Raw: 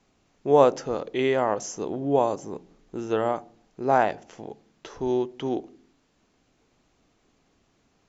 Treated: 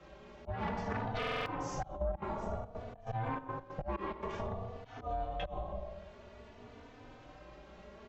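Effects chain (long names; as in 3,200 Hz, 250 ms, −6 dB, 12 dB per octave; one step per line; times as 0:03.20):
dynamic equaliser 1,200 Hz, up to −3 dB, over −33 dBFS, Q 1.1
hard clipping −17.5 dBFS, distortion −10 dB
convolution reverb RT60 0.70 s, pre-delay 5 ms, DRR −1.5 dB
volume swells 674 ms
0:01.95–0:04.41: gate pattern ".xxx.x.xxxx.xx" 142 BPM −12 dB
harmonic generator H 7 −11 dB, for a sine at −8.5 dBFS
low-pass filter 3,000 Hz 12 dB per octave
downward compressor 8 to 1, threshold −44 dBFS, peak gain reduction 27 dB
ring modulation 330 Hz
buffer that repeats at 0:01.18, samples 2,048, times 5
barber-pole flanger 3.3 ms +0.53 Hz
level +15 dB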